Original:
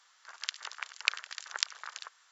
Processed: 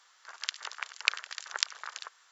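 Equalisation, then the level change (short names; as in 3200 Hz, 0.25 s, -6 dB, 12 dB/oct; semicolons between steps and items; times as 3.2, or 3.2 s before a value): brick-wall FIR high-pass 230 Hz; low shelf 460 Hz +6 dB; +1.5 dB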